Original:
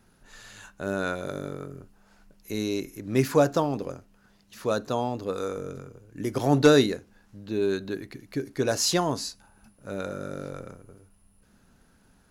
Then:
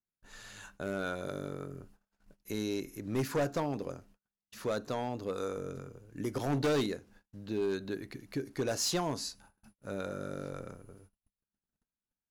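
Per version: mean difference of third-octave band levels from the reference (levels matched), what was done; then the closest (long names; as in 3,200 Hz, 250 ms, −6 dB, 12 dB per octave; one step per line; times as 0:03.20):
3.5 dB: noise gate −54 dBFS, range −37 dB
in parallel at −0.5 dB: downward compressor, threshold −33 dBFS, peak gain reduction 19 dB
on the sum: gain into a clipping stage and back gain 17.5 dB
level −8.5 dB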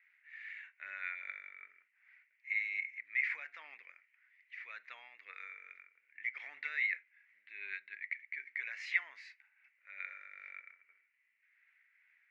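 18.0 dB: brickwall limiter −15.5 dBFS, peak gain reduction 8 dB
shaped tremolo triangle 2.5 Hz, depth 40%
flat-topped band-pass 2,100 Hz, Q 5.3
level +14 dB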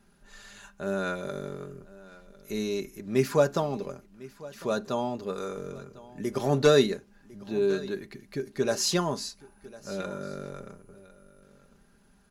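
2.5 dB: high-shelf EQ 12,000 Hz −4.5 dB
comb filter 5 ms, depth 57%
on a send: single-tap delay 1,052 ms −20 dB
on the sum: level −3 dB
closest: third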